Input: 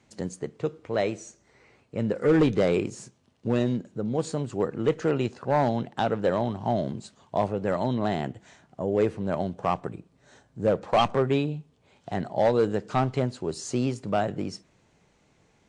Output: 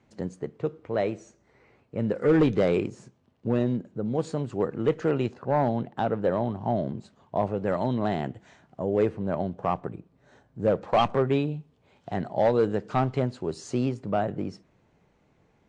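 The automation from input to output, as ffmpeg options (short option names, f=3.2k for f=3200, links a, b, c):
-af "asetnsamples=n=441:p=0,asendcmd='2.03 lowpass f 3600;2.87 lowpass f 1600;4.06 lowpass f 3000;5.34 lowpass f 1400;7.47 lowpass f 3200;9.09 lowpass f 1700;10.59 lowpass f 3200;13.89 lowpass f 1600',lowpass=f=1.8k:p=1"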